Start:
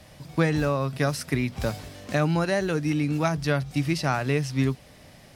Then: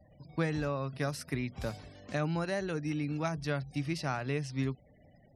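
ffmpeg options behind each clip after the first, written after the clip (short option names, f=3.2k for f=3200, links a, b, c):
-af "afftfilt=real='re*gte(hypot(re,im),0.00501)':imag='im*gte(hypot(re,im),0.00501)':win_size=1024:overlap=0.75,volume=-9dB"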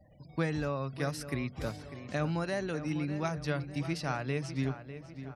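-filter_complex "[0:a]asplit=2[a][b];[b]adelay=599,lowpass=f=3.3k:p=1,volume=-11.5dB,asplit=2[c][d];[d]adelay=599,lowpass=f=3.3k:p=1,volume=0.49,asplit=2[e][f];[f]adelay=599,lowpass=f=3.3k:p=1,volume=0.49,asplit=2[g][h];[h]adelay=599,lowpass=f=3.3k:p=1,volume=0.49,asplit=2[i][j];[j]adelay=599,lowpass=f=3.3k:p=1,volume=0.49[k];[a][c][e][g][i][k]amix=inputs=6:normalize=0"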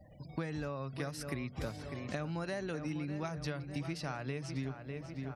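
-af "acompressor=threshold=-38dB:ratio=6,volume=3dB"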